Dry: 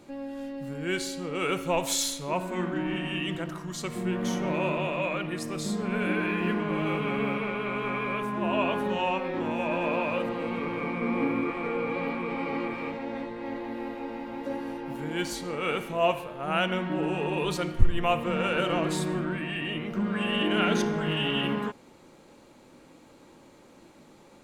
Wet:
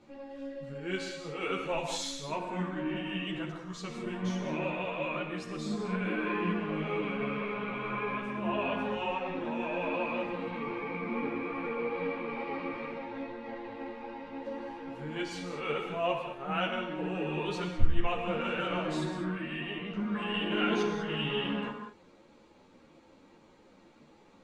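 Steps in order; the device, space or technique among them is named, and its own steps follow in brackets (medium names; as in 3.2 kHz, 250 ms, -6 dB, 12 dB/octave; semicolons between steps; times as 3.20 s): gated-style reverb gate 230 ms flat, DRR 4.5 dB; string-machine ensemble chorus (three-phase chorus; low-pass 5.4 kHz 12 dB/octave); trim -3 dB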